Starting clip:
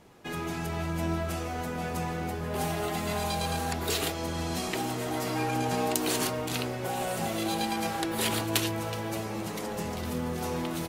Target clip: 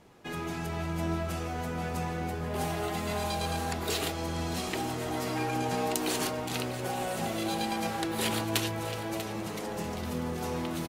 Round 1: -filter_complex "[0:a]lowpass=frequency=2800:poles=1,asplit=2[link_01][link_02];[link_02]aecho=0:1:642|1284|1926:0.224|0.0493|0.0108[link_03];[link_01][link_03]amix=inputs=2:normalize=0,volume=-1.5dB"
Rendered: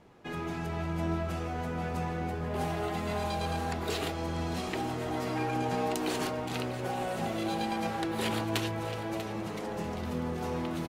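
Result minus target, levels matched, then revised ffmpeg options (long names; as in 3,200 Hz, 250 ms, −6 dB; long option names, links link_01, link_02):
8,000 Hz band −6.5 dB
-filter_complex "[0:a]lowpass=frequency=11000:poles=1,asplit=2[link_01][link_02];[link_02]aecho=0:1:642|1284|1926:0.224|0.0493|0.0108[link_03];[link_01][link_03]amix=inputs=2:normalize=0,volume=-1.5dB"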